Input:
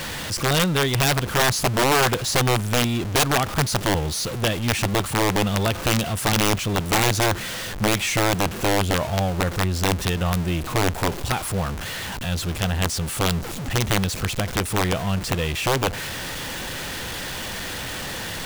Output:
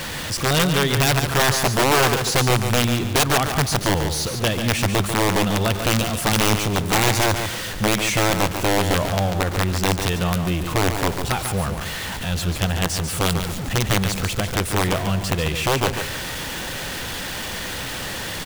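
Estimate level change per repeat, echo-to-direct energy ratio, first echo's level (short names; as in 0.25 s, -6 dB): -11.5 dB, -7.0 dB, -7.5 dB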